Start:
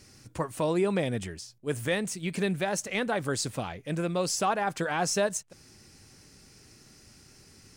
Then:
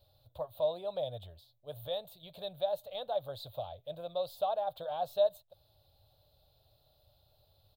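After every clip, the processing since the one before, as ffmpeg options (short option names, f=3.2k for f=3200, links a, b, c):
-af "firequalizer=gain_entry='entry(100,0);entry(210,-22);entry(390,-16);entry(590,10);entry(960,-5);entry(2000,-26);entry(3700,8);entry(5600,-29);entry(8300,-23);entry(14000,5)':delay=0.05:min_phase=1,volume=-8dB"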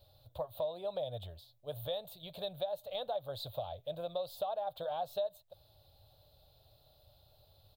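-af "acompressor=threshold=-38dB:ratio=4,volume=3.5dB"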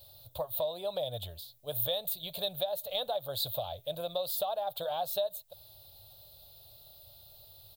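-af "crystalizer=i=3.5:c=0,volume=2.5dB"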